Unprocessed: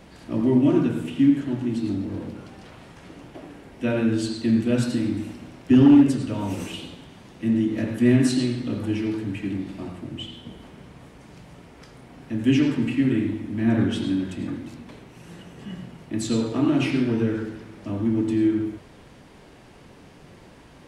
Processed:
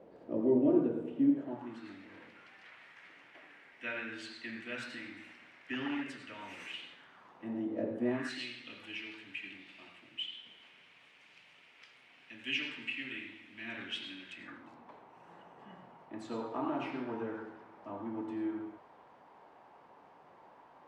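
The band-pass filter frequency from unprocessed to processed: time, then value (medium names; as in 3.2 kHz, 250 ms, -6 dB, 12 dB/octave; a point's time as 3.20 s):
band-pass filter, Q 2.5
1.35 s 490 Hz
1.97 s 2 kHz
6.89 s 2 kHz
7.94 s 450 Hz
8.43 s 2.6 kHz
14.32 s 2.6 kHz
14.72 s 900 Hz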